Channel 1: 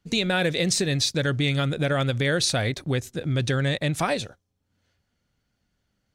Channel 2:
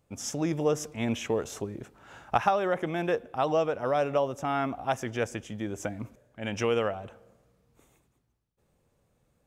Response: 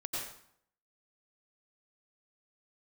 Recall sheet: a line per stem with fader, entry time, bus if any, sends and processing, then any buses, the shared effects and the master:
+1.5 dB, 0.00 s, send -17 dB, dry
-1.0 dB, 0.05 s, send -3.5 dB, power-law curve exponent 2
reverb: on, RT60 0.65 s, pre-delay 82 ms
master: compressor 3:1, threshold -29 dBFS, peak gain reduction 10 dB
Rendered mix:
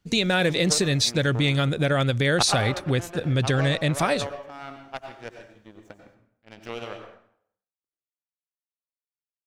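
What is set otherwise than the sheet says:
stem 1: send off; master: missing compressor 3:1, threshold -29 dBFS, peak gain reduction 10 dB

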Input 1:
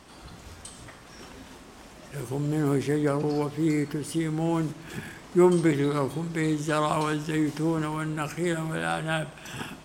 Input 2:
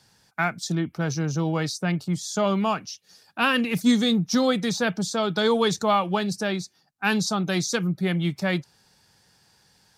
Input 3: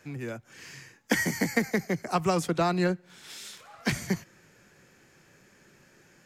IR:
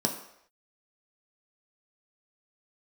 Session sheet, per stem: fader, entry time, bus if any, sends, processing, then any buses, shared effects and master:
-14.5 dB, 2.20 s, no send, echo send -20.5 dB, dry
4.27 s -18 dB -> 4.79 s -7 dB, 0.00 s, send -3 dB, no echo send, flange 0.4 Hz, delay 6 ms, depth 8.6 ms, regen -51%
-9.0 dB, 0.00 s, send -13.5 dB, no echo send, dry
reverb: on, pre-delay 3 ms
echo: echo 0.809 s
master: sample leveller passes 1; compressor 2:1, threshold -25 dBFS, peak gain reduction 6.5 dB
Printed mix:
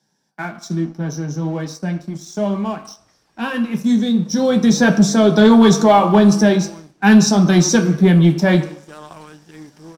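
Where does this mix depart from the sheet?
stem 2 -18.0 dB -> -10.0 dB; stem 3: muted; master: missing compressor 2:1, threshold -25 dBFS, peak gain reduction 6.5 dB

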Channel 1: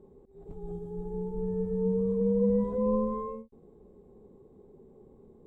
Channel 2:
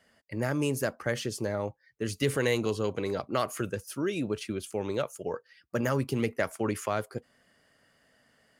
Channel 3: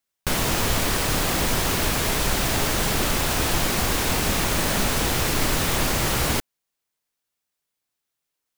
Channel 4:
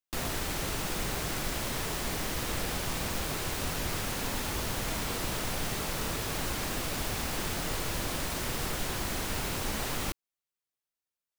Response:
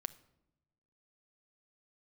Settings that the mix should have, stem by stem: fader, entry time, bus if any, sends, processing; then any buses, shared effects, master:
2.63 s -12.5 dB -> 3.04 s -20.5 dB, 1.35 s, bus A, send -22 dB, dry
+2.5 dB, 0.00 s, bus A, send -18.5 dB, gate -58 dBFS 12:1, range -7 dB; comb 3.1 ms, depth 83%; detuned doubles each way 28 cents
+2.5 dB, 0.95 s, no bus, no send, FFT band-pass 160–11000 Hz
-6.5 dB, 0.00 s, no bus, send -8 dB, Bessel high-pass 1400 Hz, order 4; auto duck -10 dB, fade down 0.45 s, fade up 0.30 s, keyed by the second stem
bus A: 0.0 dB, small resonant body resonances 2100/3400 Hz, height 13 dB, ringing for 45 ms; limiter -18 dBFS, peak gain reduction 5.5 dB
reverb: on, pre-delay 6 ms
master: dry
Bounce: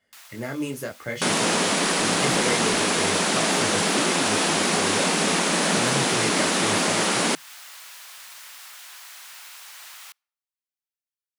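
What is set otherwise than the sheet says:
stem 2: missing comb 3.1 ms, depth 83%; reverb return -7.0 dB

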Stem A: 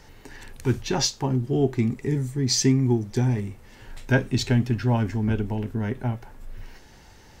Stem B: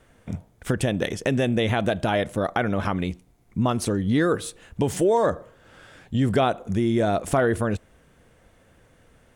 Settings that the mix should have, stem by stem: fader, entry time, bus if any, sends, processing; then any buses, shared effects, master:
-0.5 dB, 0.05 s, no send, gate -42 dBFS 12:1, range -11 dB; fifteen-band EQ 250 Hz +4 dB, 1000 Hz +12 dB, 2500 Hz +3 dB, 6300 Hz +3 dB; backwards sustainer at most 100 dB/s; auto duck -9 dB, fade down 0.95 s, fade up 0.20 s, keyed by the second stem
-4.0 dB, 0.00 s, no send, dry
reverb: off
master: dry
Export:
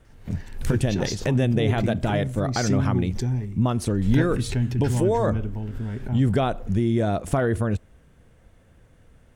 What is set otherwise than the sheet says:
stem A: missing fifteen-band EQ 250 Hz +4 dB, 1000 Hz +12 dB, 2500 Hz +3 dB, 6300 Hz +3 dB; master: extra low shelf 190 Hz +10.5 dB

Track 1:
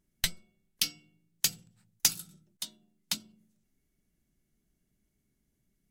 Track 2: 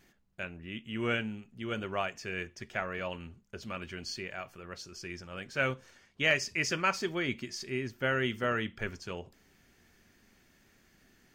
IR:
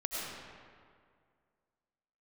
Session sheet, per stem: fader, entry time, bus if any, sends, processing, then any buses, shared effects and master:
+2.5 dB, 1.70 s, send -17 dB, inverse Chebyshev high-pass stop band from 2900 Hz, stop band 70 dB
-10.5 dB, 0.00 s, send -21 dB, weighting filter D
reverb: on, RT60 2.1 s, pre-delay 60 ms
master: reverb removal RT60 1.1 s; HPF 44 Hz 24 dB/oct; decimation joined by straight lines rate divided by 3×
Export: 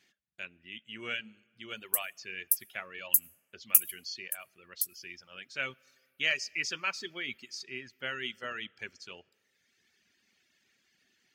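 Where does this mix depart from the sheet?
stem 1 +2.5 dB -> +10.0 dB; master: missing decimation joined by straight lines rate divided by 3×

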